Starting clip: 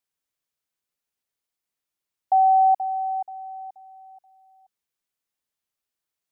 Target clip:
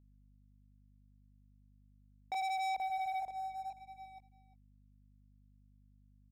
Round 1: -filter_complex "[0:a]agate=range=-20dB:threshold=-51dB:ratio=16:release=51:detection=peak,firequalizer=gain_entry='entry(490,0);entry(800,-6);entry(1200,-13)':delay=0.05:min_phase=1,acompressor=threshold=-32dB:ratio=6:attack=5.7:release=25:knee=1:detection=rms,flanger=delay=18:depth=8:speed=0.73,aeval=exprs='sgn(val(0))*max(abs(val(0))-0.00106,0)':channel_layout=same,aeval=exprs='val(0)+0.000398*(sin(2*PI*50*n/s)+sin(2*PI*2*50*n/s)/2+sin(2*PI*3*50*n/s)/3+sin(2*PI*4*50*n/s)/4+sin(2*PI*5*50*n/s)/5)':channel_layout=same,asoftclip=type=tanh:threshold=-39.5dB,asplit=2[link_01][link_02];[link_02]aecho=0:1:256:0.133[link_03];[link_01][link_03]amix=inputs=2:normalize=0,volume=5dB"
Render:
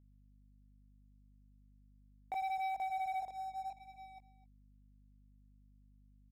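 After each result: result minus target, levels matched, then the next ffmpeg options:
downward compressor: peak gain reduction +8 dB; echo 95 ms early
-filter_complex "[0:a]agate=range=-20dB:threshold=-51dB:ratio=16:release=51:detection=peak,firequalizer=gain_entry='entry(490,0);entry(800,-6);entry(1200,-13)':delay=0.05:min_phase=1,acompressor=threshold=-22.5dB:ratio=6:attack=5.7:release=25:knee=1:detection=rms,flanger=delay=18:depth=8:speed=0.73,aeval=exprs='sgn(val(0))*max(abs(val(0))-0.00106,0)':channel_layout=same,aeval=exprs='val(0)+0.000398*(sin(2*PI*50*n/s)+sin(2*PI*2*50*n/s)/2+sin(2*PI*3*50*n/s)/3+sin(2*PI*4*50*n/s)/4+sin(2*PI*5*50*n/s)/5)':channel_layout=same,asoftclip=type=tanh:threshold=-39.5dB,asplit=2[link_01][link_02];[link_02]aecho=0:1:256:0.133[link_03];[link_01][link_03]amix=inputs=2:normalize=0,volume=5dB"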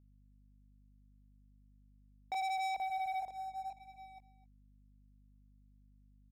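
echo 95 ms early
-filter_complex "[0:a]agate=range=-20dB:threshold=-51dB:ratio=16:release=51:detection=peak,firequalizer=gain_entry='entry(490,0);entry(800,-6);entry(1200,-13)':delay=0.05:min_phase=1,acompressor=threshold=-22.5dB:ratio=6:attack=5.7:release=25:knee=1:detection=rms,flanger=delay=18:depth=8:speed=0.73,aeval=exprs='sgn(val(0))*max(abs(val(0))-0.00106,0)':channel_layout=same,aeval=exprs='val(0)+0.000398*(sin(2*PI*50*n/s)+sin(2*PI*2*50*n/s)/2+sin(2*PI*3*50*n/s)/3+sin(2*PI*4*50*n/s)/4+sin(2*PI*5*50*n/s)/5)':channel_layout=same,asoftclip=type=tanh:threshold=-39.5dB,asplit=2[link_01][link_02];[link_02]aecho=0:1:351:0.133[link_03];[link_01][link_03]amix=inputs=2:normalize=0,volume=5dB"

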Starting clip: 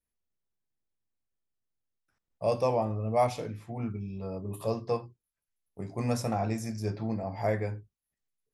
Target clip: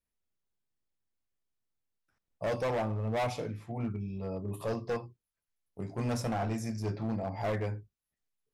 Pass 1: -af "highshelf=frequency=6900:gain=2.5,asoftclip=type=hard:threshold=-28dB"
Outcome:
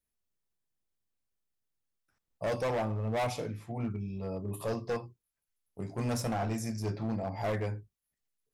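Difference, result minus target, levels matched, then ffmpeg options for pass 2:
8,000 Hz band +3.5 dB
-af "highshelf=frequency=6900:gain=-5,asoftclip=type=hard:threshold=-28dB"

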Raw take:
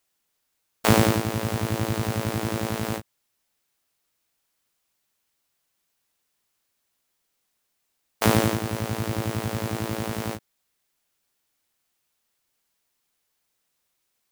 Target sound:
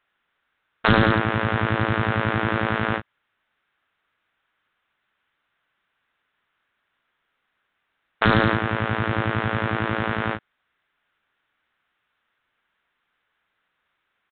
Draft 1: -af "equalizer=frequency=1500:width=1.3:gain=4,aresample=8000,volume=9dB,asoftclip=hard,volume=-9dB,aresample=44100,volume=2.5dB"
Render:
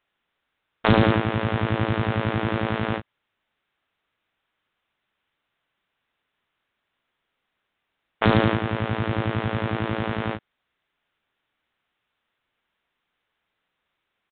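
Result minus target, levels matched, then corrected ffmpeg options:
2,000 Hz band −4.0 dB
-af "equalizer=frequency=1500:width=1.3:gain=11.5,aresample=8000,volume=9dB,asoftclip=hard,volume=-9dB,aresample=44100,volume=2.5dB"

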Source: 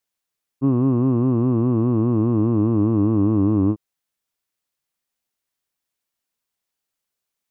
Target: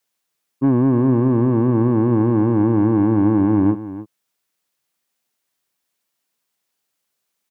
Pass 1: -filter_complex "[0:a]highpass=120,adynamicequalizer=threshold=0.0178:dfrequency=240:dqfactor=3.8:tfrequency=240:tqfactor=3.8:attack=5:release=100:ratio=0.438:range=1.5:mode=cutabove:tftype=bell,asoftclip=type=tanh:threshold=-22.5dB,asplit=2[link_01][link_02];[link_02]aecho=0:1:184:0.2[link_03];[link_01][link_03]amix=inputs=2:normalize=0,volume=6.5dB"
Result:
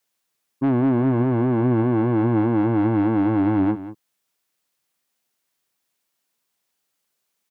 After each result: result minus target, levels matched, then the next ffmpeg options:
echo 113 ms early; soft clipping: distortion +7 dB
-filter_complex "[0:a]highpass=120,adynamicequalizer=threshold=0.0178:dfrequency=240:dqfactor=3.8:tfrequency=240:tqfactor=3.8:attack=5:release=100:ratio=0.438:range=1.5:mode=cutabove:tftype=bell,asoftclip=type=tanh:threshold=-22.5dB,asplit=2[link_01][link_02];[link_02]aecho=0:1:297:0.2[link_03];[link_01][link_03]amix=inputs=2:normalize=0,volume=6.5dB"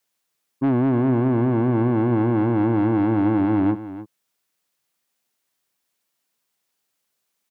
soft clipping: distortion +7 dB
-filter_complex "[0:a]highpass=120,adynamicequalizer=threshold=0.0178:dfrequency=240:dqfactor=3.8:tfrequency=240:tqfactor=3.8:attack=5:release=100:ratio=0.438:range=1.5:mode=cutabove:tftype=bell,asoftclip=type=tanh:threshold=-16dB,asplit=2[link_01][link_02];[link_02]aecho=0:1:297:0.2[link_03];[link_01][link_03]amix=inputs=2:normalize=0,volume=6.5dB"

